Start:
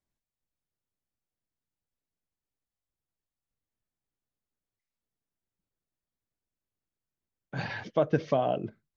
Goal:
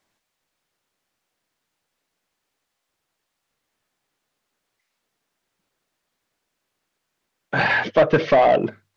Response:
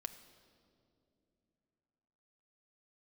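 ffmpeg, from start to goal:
-filter_complex "[0:a]bandreject=frequency=50:width_type=h:width=6,bandreject=frequency=100:width_type=h:width=6,asplit=2[link_01][link_02];[link_02]highpass=frequency=720:poles=1,volume=21dB,asoftclip=type=tanh:threshold=-13dB[link_03];[link_01][link_03]amix=inputs=2:normalize=0,lowpass=frequency=3800:poles=1,volume=-6dB,acrossover=split=4300[link_04][link_05];[link_05]acompressor=threshold=-60dB:ratio=4:attack=1:release=60[link_06];[link_04][link_06]amix=inputs=2:normalize=0,volume=6.5dB"

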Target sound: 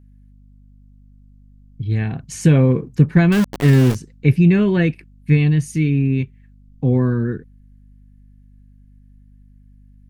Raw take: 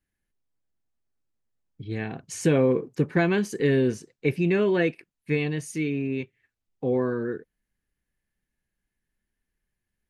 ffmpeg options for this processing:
ffmpeg -i in.wav -filter_complex "[0:a]asubboost=boost=8.5:cutoff=160,asettb=1/sr,asplit=3[link_01][link_02][link_03];[link_01]atrim=end=3.324[link_04];[link_02]atrim=start=3.32:end=3.95,asetpts=PTS-STARTPTS,afade=type=in:duration=0.004:curve=qsin,afade=type=out:start_time=0.626:duration=0.004:curve=qsin,aeval=exprs='val(0)*gte(abs(val(0)),0.0668)':channel_layout=same[link_05];[link_03]atrim=start=3.946[link_06];[link_04][link_05]acrossfade=duration=0.004:curve1=hsin:curve2=qsin[link_07];[link_07][link_06]acrossfade=duration=0.004:curve1=qsin:curve2=hsin,aeval=exprs='val(0)+0.00316*(sin(2*PI*50*n/s)+sin(2*PI*2*50*n/s)/2+sin(2*PI*3*50*n/s)/3+sin(2*PI*4*50*n/s)/4+sin(2*PI*5*50*n/s)/5)':channel_layout=same,volume=4dB" out.wav

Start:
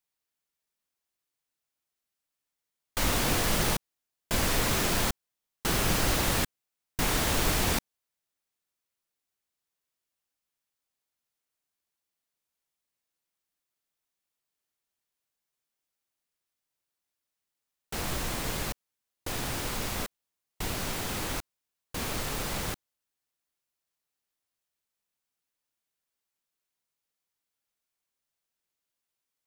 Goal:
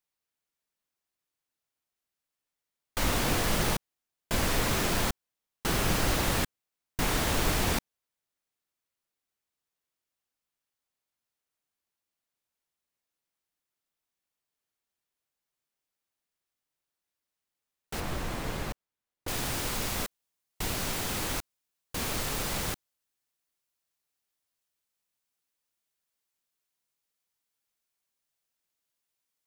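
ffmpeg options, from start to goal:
ffmpeg -i in.wav -af "asetnsamples=nb_out_samples=441:pad=0,asendcmd='18 highshelf g -10;19.28 highshelf g 2.5',highshelf=frequency=3300:gain=-3" out.wav

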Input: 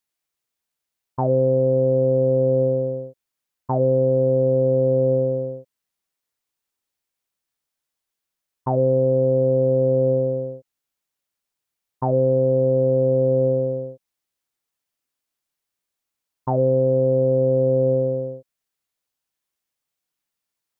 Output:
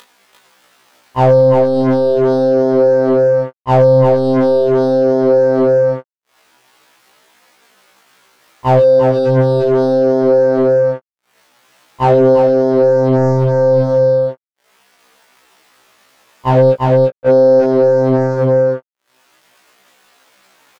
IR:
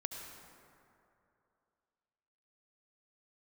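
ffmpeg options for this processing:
-filter_complex "[0:a]asplit=3[link_01][link_02][link_03];[link_01]afade=type=out:start_time=8.79:duration=0.02[link_04];[link_02]highpass=300,afade=type=in:start_time=8.79:duration=0.02,afade=type=out:start_time=9.26:duration=0.02[link_05];[link_03]afade=type=in:start_time=9.26:duration=0.02[link_06];[link_04][link_05][link_06]amix=inputs=3:normalize=0,asplit=3[link_07][link_08][link_09];[link_07]afade=type=out:start_time=16.7:duration=0.02[link_10];[link_08]agate=range=-55dB:threshold=-7dB:ratio=16:detection=peak,afade=type=in:start_time=16.7:duration=0.02,afade=type=out:start_time=17.26:duration=0.02[link_11];[link_09]afade=type=in:start_time=17.26:duration=0.02[link_12];[link_10][link_11][link_12]amix=inputs=3:normalize=0,acompressor=mode=upward:threshold=-33dB:ratio=2.5,aeval=exprs='sgn(val(0))*max(abs(val(0))-0.00299,0)':channel_layout=same,flanger=delay=19.5:depth=5.1:speed=0.4,asoftclip=type=tanh:threshold=-22.5dB,asplit=2[link_13][link_14];[link_14]highpass=frequency=720:poles=1,volume=25dB,asoftclip=type=tanh:threshold=-22.5dB[link_15];[link_13][link_15]amix=inputs=2:normalize=0,lowpass=frequency=1100:poles=1,volume=-6dB,asettb=1/sr,asplit=3[link_16][link_17][link_18];[link_16]atrim=end=1.374[link_19];[link_17]atrim=start=1.37:end=1.82,asetpts=PTS-STARTPTS,afade=type=in:duration=0.004:curve=qsin,afade=type=out:start_time=0.446:duration=0.004:curve=qsin,asplit=2[link_20][link_21];[link_21]adelay=42,volume=-12.5dB[link_22];[link_20][link_22]amix=inputs=2:normalize=0,atrim=end_sample=19845[link_23];[link_18]atrim=start=1.816[link_24];[link_19][link_23]acrossfade=duration=0.004:curve1=hsin:curve2=qsin[link_25];[link_25][link_24]acrossfade=duration=0.004:curve1=qsin:curve2=hsin,aecho=1:1:347:0.668,alimiter=level_in=24dB:limit=-1dB:release=50:level=0:latency=1,afftfilt=real='re*1.73*eq(mod(b,3),0)':imag='im*1.73*eq(mod(b,3),0)':win_size=2048:overlap=0.75,volume=-5dB"

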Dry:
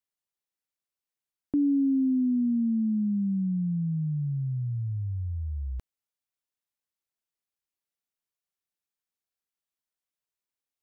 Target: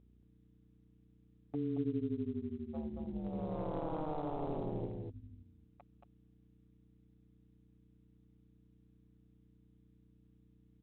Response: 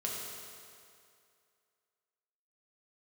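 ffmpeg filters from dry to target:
-filter_complex "[0:a]equalizer=frequency=130:width=1.4:gain=5.5,bandreject=frequency=380:width=12,aecho=1:1:7.1:0.87,adynamicequalizer=threshold=0.00794:dfrequency=100:dqfactor=7:tfrequency=100:tqfactor=7:attack=5:release=100:ratio=0.375:range=2.5:mode=boostabove:tftype=bell,asplit=3[link_01][link_02][link_03];[link_01]bandpass=frequency=730:width_type=q:width=8,volume=0dB[link_04];[link_02]bandpass=frequency=1090:width_type=q:width=8,volume=-6dB[link_05];[link_03]bandpass=frequency=2440:width_type=q:width=8,volume=-9dB[link_06];[link_04][link_05][link_06]amix=inputs=3:normalize=0,aeval=exprs='val(0)+0.000501*(sin(2*PI*60*n/s)+sin(2*PI*2*60*n/s)/2+sin(2*PI*3*60*n/s)/3+sin(2*PI*4*60*n/s)/4+sin(2*PI*5*60*n/s)/5)':channel_layout=same,tremolo=f=150:d=0.947,asplit=3[link_07][link_08][link_09];[link_07]afade=type=out:start_time=2.73:duration=0.02[link_10];[link_08]aeval=exprs='0.00708*sin(PI/2*4.47*val(0)/0.00708)':channel_layout=same,afade=type=in:start_time=2.73:duration=0.02,afade=type=out:start_time=4.86:duration=0.02[link_11];[link_09]afade=type=in:start_time=4.86:duration=0.02[link_12];[link_10][link_11][link_12]amix=inputs=3:normalize=0,aecho=1:1:227:0.668,volume=7dB" -ar 8000 -c:a adpcm_ima_wav

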